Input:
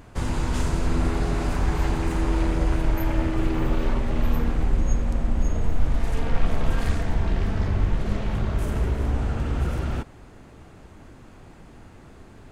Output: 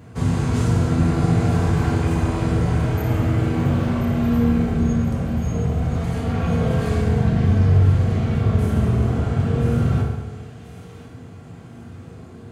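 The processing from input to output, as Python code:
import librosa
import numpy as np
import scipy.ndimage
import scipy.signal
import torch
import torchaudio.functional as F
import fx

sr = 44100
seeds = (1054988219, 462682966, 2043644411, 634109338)

y = scipy.signal.sosfilt(scipy.signal.butter(4, 84.0, 'highpass', fs=sr, output='sos'), x)
y = fx.low_shelf(y, sr, hz=220.0, db=11.5)
y = fx.echo_wet_highpass(y, sr, ms=1034, feedback_pct=35, hz=2400.0, wet_db=-9.5)
y = fx.rev_fdn(y, sr, rt60_s=1.2, lf_ratio=1.05, hf_ratio=0.75, size_ms=13.0, drr_db=-4.0)
y = F.gain(torch.from_numpy(y), -3.0).numpy()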